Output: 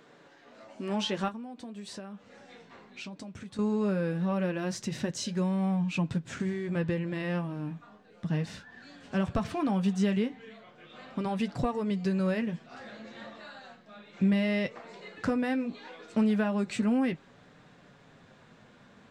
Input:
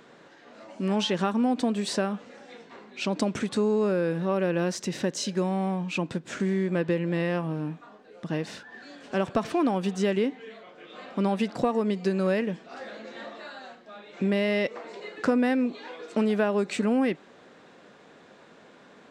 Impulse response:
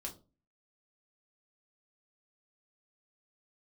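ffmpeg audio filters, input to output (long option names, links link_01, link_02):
-filter_complex "[0:a]asubboost=boost=7:cutoff=130,asettb=1/sr,asplit=3[link_01][link_02][link_03];[link_01]atrim=end=1.284[link_04];[link_02]atrim=start=1.28:end=3.59,asetpts=PTS-STARTPTS,afade=type=in:duration=0.004:curve=qsin,afade=type=out:start_time=2.306:duration=0.004:curve=qsin,acompressor=threshold=-36dB:ratio=8[link_05];[link_03]atrim=start=3.586[link_06];[link_04][link_05]acrossfade=duration=0.004:curve1=hsin:curve2=qsin[link_07];[link_07][link_06]acrossfade=duration=0.004:curve1=qsin:curve2=hsin,flanger=delay=6.6:depth=5:regen=-47:speed=0.17:shape=triangular"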